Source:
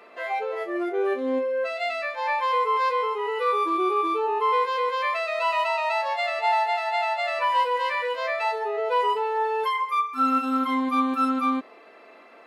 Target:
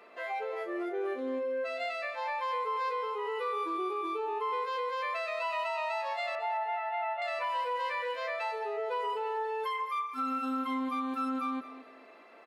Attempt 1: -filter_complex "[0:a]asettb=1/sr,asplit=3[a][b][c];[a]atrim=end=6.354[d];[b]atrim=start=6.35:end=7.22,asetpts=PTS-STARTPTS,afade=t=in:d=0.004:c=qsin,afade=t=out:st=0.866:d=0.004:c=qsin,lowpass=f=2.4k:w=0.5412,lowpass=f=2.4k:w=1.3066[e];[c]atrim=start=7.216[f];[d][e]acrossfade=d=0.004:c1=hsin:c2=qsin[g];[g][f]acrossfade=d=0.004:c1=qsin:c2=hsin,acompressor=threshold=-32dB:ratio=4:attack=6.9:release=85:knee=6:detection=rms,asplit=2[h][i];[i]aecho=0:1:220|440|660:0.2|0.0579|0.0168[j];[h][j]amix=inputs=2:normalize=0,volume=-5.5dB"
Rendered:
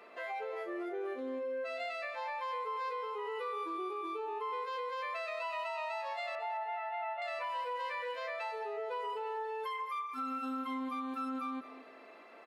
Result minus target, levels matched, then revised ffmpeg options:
compressor: peak gain reduction +5 dB
-filter_complex "[0:a]asettb=1/sr,asplit=3[a][b][c];[a]atrim=end=6.354[d];[b]atrim=start=6.35:end=7.22,asetpts=PTS-STARTPTS,afade=t=in:d=0.004:c=qsin,afade=t=out:st=0.866:d=0.004:c=qsin,lowpass=f=2.4k:w=0.5412,lowpass=f=2.4k:w=1.3066[e];[c]atrim=start=7.216[f];[d][e]acrossfade=d=0.004:c1=hsin:c2=qsin[g];[g][f]acrossfade=d=0.004:c1=qsin:c2=hsin,acompressor=threshold=-25dB:ratio=4:attack=6.9:release=85:knee=6:detection=rms,asplit=2[h][i];[i]aecho=0:1:220|440|660:0.2|0.0579|0.0168[j];[h][j]amix=inputs=2:normalize=0,volume=-5.5dB"

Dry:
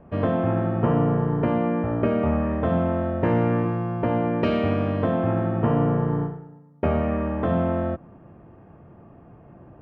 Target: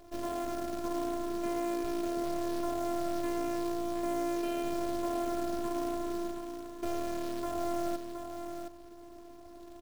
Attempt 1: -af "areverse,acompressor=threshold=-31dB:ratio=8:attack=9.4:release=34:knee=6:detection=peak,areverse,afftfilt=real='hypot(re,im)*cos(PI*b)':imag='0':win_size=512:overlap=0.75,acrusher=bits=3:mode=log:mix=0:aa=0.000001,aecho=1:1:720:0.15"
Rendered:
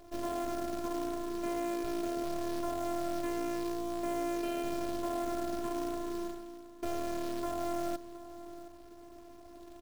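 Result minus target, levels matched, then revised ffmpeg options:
echo-to-direct -9.5 dB
-af "areverse,acompressor=threshold=-31dB:ratio=8:attack=9.4:release=34:knee=6:detection=peak,areverse,afftfilt=real='hypot(re,im)*cos(PI*b)':imag='0':win_size=512:overlap=0.75,acrusher=bits=3:mode=log:mix=0:aa=0.000001,aecho=1:1:720:0.447"

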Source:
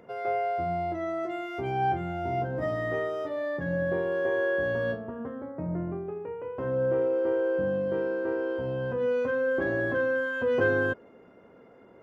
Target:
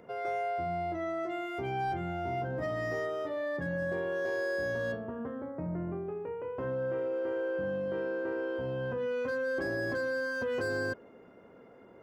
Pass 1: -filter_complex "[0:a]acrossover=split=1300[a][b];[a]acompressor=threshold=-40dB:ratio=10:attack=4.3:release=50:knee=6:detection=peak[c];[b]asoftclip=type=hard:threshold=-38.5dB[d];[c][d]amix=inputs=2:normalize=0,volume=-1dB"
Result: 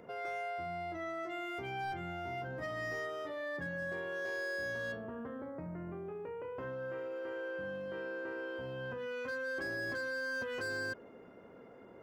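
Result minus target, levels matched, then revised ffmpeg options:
compressor: peak gain reduction +9 dB
-filter_complex "[0:a]acrossover=split=1300[a][b];[a]acompressor=threshold=-30dB:ratio=10:attack=4.3:release=50:knee=6:detection=peak[c];[b]asoftclip=type=hard:threshold=-38.5dB[d];[c][d]amix=inputs=2:normalize=0,volume=-1dB"

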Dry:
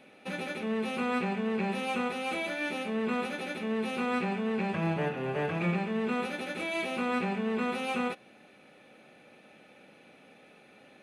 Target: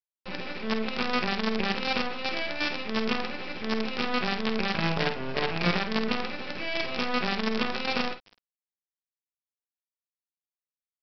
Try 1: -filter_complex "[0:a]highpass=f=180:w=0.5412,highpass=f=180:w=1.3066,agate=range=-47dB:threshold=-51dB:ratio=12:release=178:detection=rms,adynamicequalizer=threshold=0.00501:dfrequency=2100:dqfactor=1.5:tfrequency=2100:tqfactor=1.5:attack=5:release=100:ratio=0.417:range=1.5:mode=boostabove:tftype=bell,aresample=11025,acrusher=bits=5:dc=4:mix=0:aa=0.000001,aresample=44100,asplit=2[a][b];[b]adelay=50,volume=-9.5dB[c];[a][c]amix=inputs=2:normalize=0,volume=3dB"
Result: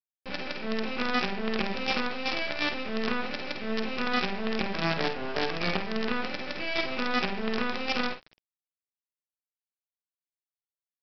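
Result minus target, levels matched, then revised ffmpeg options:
125 Hz band -3.0 dB
-filter_complex "[0:a]highpass=f=64:w=0.5412,highpass=f=64:w=1.3066,agate=range=-47dB:threshold=-51dB:ratio=12:release=178:detection=rms,adynamicequalizer=threshold=0.00501:dfrequency=2100:dqfactor=1.5:tfrequency=2100:tqfactor=1.5:attack=5:release=100:ratio=0.417:range=1.5:mode=boostabove:tftype=bell,aresample=11025,acrusher=bits=5:dc=4:mix=0:aa=0.000001,aresample=44100,asplit=2[a][b];[b]adelay=50,volume=-9.5dB[c];[a][c]amix=inputs=2:normalize=0,volume=3dB"

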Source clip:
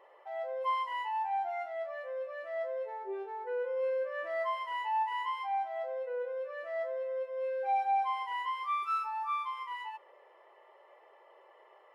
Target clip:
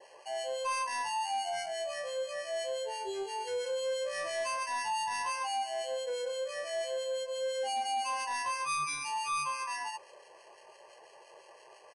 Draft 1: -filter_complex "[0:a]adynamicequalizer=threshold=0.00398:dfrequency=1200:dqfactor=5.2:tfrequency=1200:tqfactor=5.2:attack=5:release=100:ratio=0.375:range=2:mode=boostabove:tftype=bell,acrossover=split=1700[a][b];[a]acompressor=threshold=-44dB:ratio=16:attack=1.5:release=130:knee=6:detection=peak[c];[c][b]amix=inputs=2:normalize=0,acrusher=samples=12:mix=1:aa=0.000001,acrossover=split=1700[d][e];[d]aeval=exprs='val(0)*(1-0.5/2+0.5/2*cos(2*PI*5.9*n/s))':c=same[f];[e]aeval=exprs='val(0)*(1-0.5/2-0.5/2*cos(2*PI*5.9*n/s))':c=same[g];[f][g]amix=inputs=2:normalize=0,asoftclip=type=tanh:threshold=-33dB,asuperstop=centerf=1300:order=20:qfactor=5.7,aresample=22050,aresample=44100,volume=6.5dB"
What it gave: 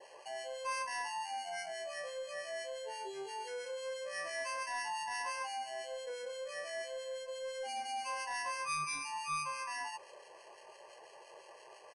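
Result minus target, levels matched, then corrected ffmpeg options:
compressor: peak gain reduction +10.5 dB
-filter_complex "[0:a]adynamicequalizer=threshold=0.00398:dfrequency=1200:dqfactor=5.2:tfrequency=1200:tqfactor=5.2:attack=5:release=100:ratio=0.375:range=2:mode=boostabove:tftype=bell,acrossover=split=1700[a][b];[a]acompressor=threshold=-33dB:ratio=16:attack=1.5:release=130:knee=6:detection=peak[c];[c][b]amix=inputs=2:normalize=0,acrusher=samples=12:mix=1:aa=0.000001,acrossover=split=1700[d][e];[d]aeval=exprs='val(0)*(1-0.5/2+0.5/2*cos(2*PI*5.9*n/s))':c=same[f];[e]aeval=exprs='val(0)*(1-0.5/2-0.5/2*cos(2*PI*5.9*n/s))':c=same[g];[f][g]amix=inputs=2:normalize=0,asoftclip=type=tanh:threshold=-33dB,asuperstop=centerf=1300:order=20:qfactor=5.7,aresample=22050,aresample=44100,volume=6.5dB"

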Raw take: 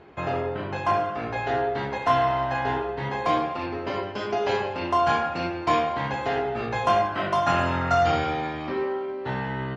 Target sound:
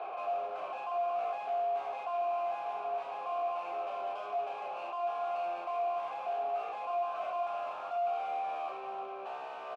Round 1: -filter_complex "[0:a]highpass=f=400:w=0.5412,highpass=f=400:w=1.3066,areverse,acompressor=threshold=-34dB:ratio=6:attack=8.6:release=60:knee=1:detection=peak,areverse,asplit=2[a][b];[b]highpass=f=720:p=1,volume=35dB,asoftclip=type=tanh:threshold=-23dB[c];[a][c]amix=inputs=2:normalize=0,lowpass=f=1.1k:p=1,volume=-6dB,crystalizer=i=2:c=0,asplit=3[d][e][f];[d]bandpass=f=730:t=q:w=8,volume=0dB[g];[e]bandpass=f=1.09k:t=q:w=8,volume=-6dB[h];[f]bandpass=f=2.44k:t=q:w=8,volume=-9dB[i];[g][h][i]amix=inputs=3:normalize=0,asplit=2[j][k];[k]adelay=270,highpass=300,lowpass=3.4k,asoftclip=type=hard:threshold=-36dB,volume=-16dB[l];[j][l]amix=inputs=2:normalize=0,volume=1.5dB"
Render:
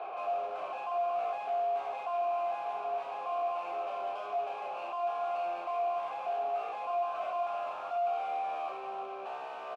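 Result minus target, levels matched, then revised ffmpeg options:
compressor: peak gain reduction -6.5 dB
-filter_complex "[0:a]highpass=f=400:w=0.5412,highpass=f=400:w=1.3066,areverse,acompressor=threshold=-42dB:ratio=6:attack=8.6:release=60:knee=1:detection=peak,areverse,asplit=2[a][b];[b]highpass=f=720:p=1,volume=35dB,asoftclip=type=tanh:threshold=-23dB[c];[a][c]amix=inputs=2:normalize=0,lowpass=f=1.1k:p=1,volume=-6dB,crystalizer=i=2:c=0,asplit=3[d][e][f];[d]bandpass=f=730:t=q:w=8,volume=0dB[g];[e]bandpass=f=1.09k:t=q:w=8,volume=-6dB[h];[f]bandpass=f=2.44k:t=q:w=8,volume=-9dB[i];[g][h][i]amix=inputs=3:normalize=0,asplit=2[j][k];[k]adelay=270,highpass=300,lowpass=3.4k,asoftclip=type=hard:threshold=-36dB,volume=-16dB[l];[j][l]amix=inputs=2:normalize=0,volume=1.5dB"

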